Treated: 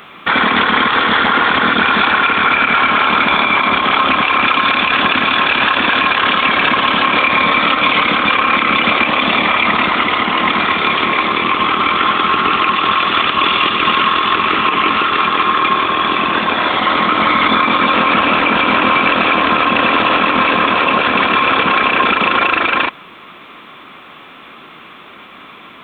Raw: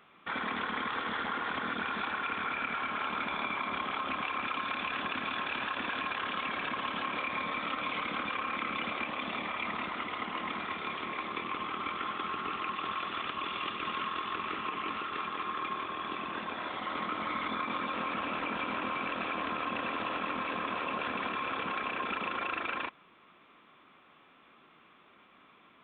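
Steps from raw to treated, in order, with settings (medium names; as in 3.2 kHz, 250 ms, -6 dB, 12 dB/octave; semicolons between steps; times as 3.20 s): treble shelf 3.8 kHz +7.5 dB; loudness maximiser +23 dB; trim -1 dB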